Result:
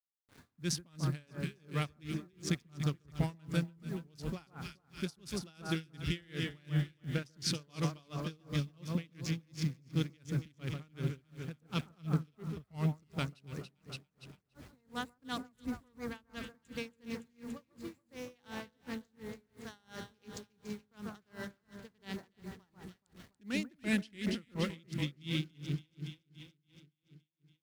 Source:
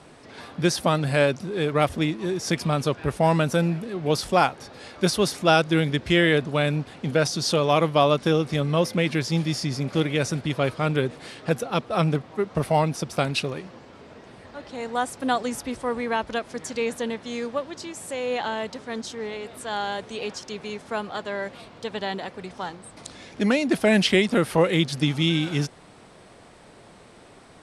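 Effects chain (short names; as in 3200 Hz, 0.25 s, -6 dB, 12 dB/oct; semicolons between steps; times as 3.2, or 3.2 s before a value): Wiener smoothing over 15 samples; expander -39 dBFS; passive tone stack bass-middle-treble 6-0-2; in parallel at -1 dB: compressor, threshold -48 dBFS, peak gain reduction 13 dB; on the sum: bit-crush 11-bit; on a send: echo with dull and thin repeats by turns 0.142 s, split 1600 Hz, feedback 76%, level -5.5 dB; on the sum: dB-linear tremolo 2.8 Hz, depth 33 dB; gain +8 dB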